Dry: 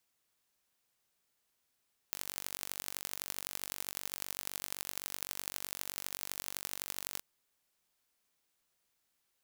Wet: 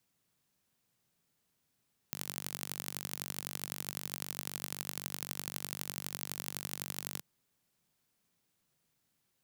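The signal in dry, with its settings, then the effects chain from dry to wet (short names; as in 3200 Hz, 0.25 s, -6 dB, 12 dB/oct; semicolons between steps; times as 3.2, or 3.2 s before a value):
pulse train 47.8/s, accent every 4, -9 dBFS 5.07 s
bell 150 Hz +14.5 dB 1.8 oct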